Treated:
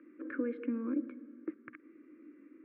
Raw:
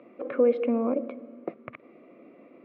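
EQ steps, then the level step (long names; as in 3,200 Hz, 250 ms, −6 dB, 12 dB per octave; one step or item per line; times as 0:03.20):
pair of resonant band-passes 700 Hz, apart 2.4 octaves
+3.5 dB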